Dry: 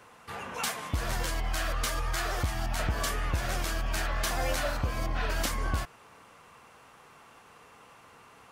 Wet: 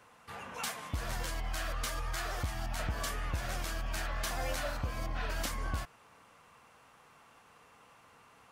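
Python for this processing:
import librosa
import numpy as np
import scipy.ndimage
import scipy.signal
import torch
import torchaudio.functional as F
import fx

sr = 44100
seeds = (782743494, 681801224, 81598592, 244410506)

y = fx.peak_eq(x, sr, hz=380.0, db=-4.0, octaves=0.36)
y = F.gain(torch.from_numpy(y), -5.5).numpy()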